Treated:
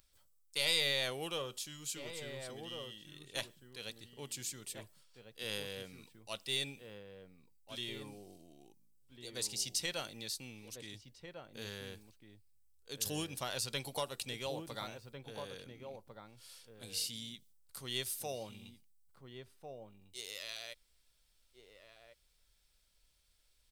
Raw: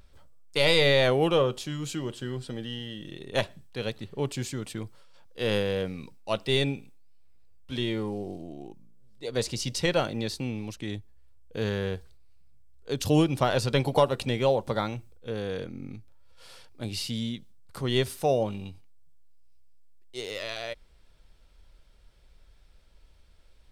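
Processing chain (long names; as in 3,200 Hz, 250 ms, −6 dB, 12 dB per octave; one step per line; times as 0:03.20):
first-order pre-emphasis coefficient 0.9
slap from a distant wall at 240 metres, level −6 dB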